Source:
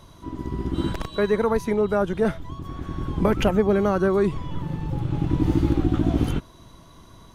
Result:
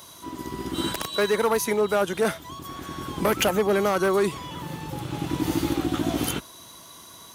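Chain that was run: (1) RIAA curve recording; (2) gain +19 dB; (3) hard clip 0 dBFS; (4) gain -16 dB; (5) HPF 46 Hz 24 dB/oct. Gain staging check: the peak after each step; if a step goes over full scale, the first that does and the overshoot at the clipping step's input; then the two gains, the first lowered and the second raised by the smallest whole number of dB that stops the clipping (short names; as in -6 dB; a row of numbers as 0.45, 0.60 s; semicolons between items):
-9.0, +10.0, 0.0, -16.0, -12.0 dBFS; step 2, 10.0 dB; step 2 +9 dB, step 4 -6 dB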